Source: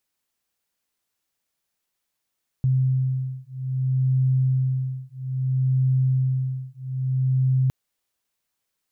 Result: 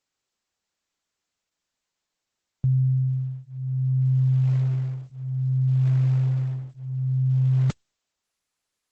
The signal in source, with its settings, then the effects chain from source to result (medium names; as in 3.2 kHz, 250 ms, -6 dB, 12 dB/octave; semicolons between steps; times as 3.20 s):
beating tones 130 Hz, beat 0.61 Hz, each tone -22.5 dBFS 5.06 s
Opus 12 kbps 48 kHz